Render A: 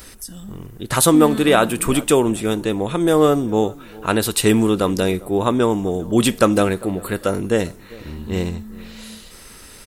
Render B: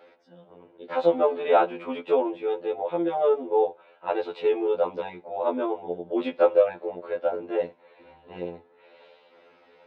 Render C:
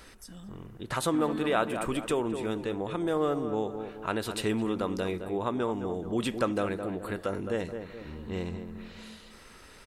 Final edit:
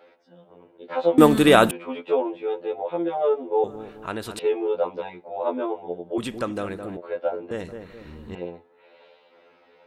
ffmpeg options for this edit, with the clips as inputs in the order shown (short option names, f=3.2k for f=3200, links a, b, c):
-filter_complex "[2:a]asplit=3[a][b][c];[1:a]asplit=5[d][e][f][g][h];[d]atrim=end=1.182[i];[0:a]atrim=start=1.178:end=1.712[j];[e]atrim=start=1.708:end=3.642[k];[a]atrim=start=3.638:end=4.392[l];[f]atrim=start=4.388:end=6.182[m];[b]atrim=start=6.178:end=6.972[n];[g]atrim=start=6.968:end=7.512[o];[c]atrim=start=7.508:end=8.352[p];[h]atrim=start=8.348[q];[i][j]acrossfade=d=0.004:c1=hsin:c2=hsin[r];[r][k]acrossfade=d=0.004:c1=hsin:c2=hsin[s];[s][l]acrossfade=d=0.004:c1=hsin:c2=hsin[t];[t][m]acrossfade=d=0.004:c1=hsin:c2=hsin[u];[u][n]acrossfade=d=0.004:c1=hsin:c2=hsin[v];[v][o]acrossfade=d=0.004:c1=hsin:c2=hsin[w];[w][p]acrossfade=d=0.004:c1=hsin:c2=hsin[x];[x][q]acrossfade=d=0.004:c1=hsin:c2=hsin"